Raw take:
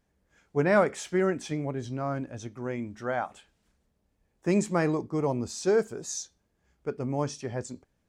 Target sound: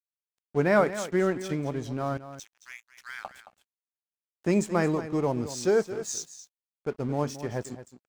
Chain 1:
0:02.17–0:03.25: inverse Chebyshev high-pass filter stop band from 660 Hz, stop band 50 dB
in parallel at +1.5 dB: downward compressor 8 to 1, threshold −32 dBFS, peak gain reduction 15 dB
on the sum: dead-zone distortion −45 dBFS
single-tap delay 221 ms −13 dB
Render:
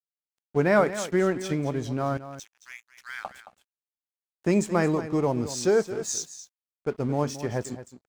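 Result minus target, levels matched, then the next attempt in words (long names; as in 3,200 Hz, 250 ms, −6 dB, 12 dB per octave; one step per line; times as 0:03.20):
downward compressor: peak gain reduction −9 dB
0:02.17–0:03.25: inverse Chebyshev high-pass filter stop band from 660 Hz, stop band 50 dB
in parallel at +1.5 dB: downward compressor 8 to 1, threshold −42 dBFS, peak gain reduction 24 dB
on the sum: dead-zone distortion −45 dBFS
single-tap delay 221 ms −13 dB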